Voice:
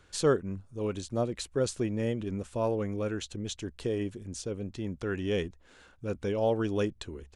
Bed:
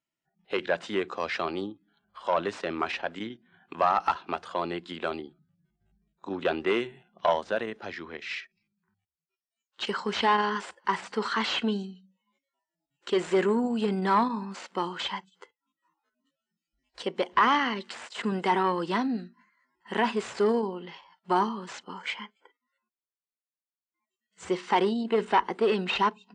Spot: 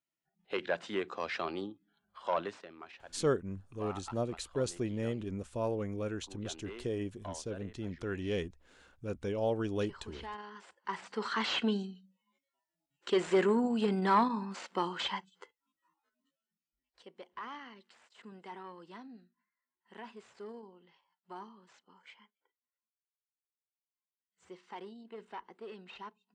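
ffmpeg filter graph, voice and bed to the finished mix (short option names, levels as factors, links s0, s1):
-filter_complex "[0:a]adelay=3000,volume=0.596[s0];[1:a]volume=3.76,afade=t=out:st=2.36:d=0.32:silence=0.188365,afade=t=in:st=10.53:d=1.15:silence=0.133352,afade=t=out:st=15.98:d=1.05:silence=0.112202[s1];[s0][s1]amix=inputs=2:normalize=0"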